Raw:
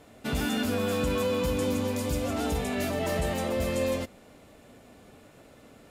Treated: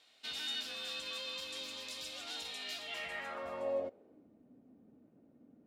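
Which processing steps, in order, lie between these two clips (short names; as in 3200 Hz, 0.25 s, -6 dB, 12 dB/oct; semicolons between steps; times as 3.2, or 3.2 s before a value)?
speed mistake 24 fps film run at 25 fps; band-pass sweep 3900 Hz -> 240 Hz, 2.8–4.3; vocal rider within 4 dB 2 s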